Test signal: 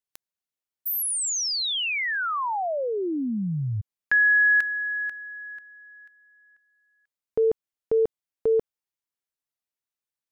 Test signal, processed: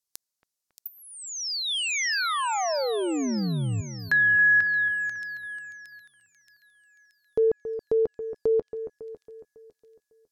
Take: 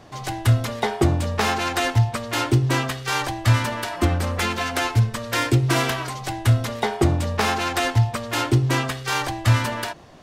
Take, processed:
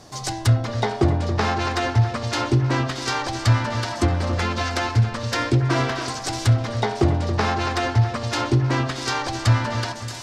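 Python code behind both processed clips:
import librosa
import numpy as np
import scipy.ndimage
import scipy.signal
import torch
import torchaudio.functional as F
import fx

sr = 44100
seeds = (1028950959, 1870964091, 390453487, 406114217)

y = fx.high_shelf_res(x, sr, hz=3800.0, db=8.0, q=1.5)
y = fx.echo_split(y, sr, split_hz=2400.0, low_ms=276, high_ms=626, feedback_pct=52, wet_db=-11.0)
y = fx.env_lowpass_down(y, sr, base_hz=2500.0, full_db=-16.5)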